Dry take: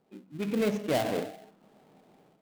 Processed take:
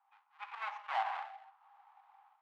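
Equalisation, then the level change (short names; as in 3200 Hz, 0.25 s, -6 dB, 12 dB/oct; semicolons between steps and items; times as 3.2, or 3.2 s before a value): rippled Chebyshev high-pass 790 Hz, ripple 3 dB; LPF 1100 Hz 12 dB/oct; +9.0 dB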